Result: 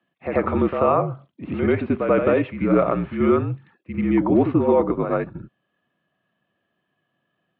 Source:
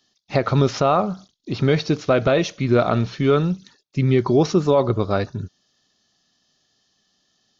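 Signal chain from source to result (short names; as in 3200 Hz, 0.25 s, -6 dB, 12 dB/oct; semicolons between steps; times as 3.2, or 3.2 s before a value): air absorption 180 m; reverse echo 88 ms -6.5 dB; mistuned SSB -54 Hz 190–2700 Hz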